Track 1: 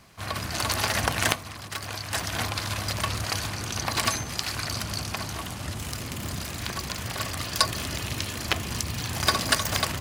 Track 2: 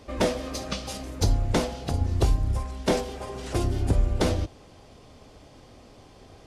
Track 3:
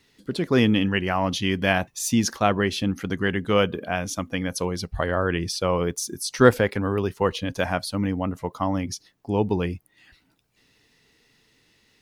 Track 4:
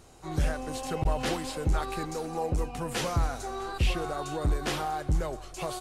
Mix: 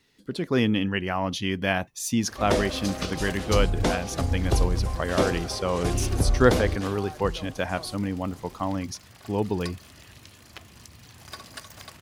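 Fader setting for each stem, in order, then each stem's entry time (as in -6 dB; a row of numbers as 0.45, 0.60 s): -18.0, -0.5, -3.5, -8.5 dB; 2.05, 2.30, 0.00, 2.15 s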